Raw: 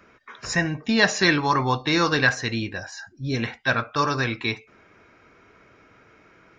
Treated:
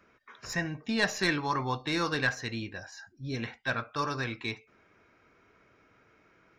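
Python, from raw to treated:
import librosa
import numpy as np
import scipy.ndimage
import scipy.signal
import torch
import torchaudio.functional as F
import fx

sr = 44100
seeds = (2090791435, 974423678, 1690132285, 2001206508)

y = fx.tracing_dist(x, sr, depth_ms=0.022)
y = y * 10.0 ** (-9.0 / 20.0)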